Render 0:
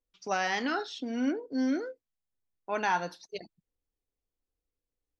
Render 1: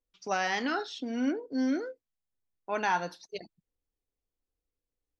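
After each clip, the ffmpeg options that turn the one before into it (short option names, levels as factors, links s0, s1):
-af anull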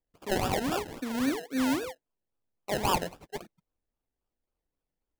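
-af "acrusher=samples=30:mix=1:aa=0.000001:lfo=1:lforange=18:lforate=3.7,volume=1.12"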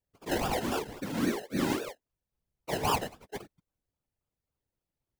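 -af "afftfilt=real='hypot(re,im)*cos(2*PI*random(0))':imag='hypot(re,im)*sin(2*PI*random(1))':win_size=512:overlap=0.75,volume=1.68"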